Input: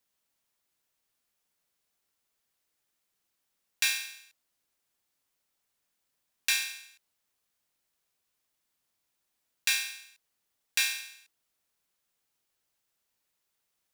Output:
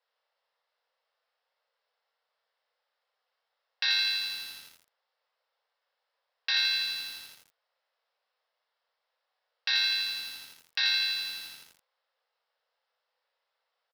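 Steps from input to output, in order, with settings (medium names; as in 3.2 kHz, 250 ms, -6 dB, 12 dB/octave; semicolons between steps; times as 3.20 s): in parallel at 0 dB: compression 12:1, threshold -34 dBFS, peak gain reduction 12.5 dB; on the sum: elliptic high-pass 490 Hz, stop band 40 dB; tilt EQ -3 dB/octave; band-stop 2.4 kHz, Q 15; early reflections 32 ms -7.5 dB, 60 ms -5 dB; dynamic bell 4.3 kHz, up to +8 dB, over -48 dBFS, Q 2.6; Chebyshev low-pass 5.3 kHz, order 6; bit-crushed delay 83 ms, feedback 80%, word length 8-bit, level -4 dB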